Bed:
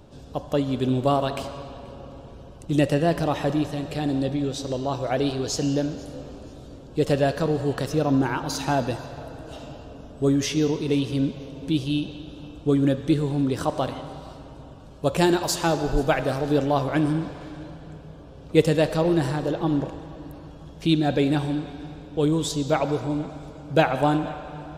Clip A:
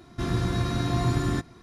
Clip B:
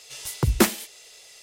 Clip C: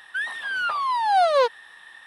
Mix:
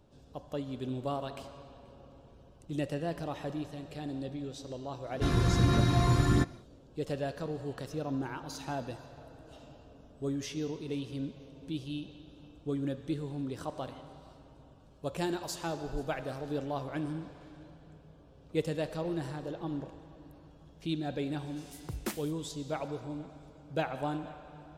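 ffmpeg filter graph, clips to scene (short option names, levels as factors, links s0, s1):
-filter_complex "[0:a]volume=0.211[s0];[1:a]aphaser=in_gain=1:out_gain=1:delay=2:decay=0.29:speed=1.4:type=sinusoidal,atrim=end=1.62,asetpts=PTS-STARTPTS,volume=0.891,afade=t=in:d=0.1,afade=t=out:st=1.52:d=0.1,adelay=5030[s1];[2:a]atrim=end=1.42,asetpts=PTS-STARTPTS,volume=0.126,afade=t=in:d=0.004:c=hsin,afade=t=out:st=1.416:d=0.004:c=hsin,adelay=21460[s2];[s0][s1][s2]amix=inputs=3:normalize=0"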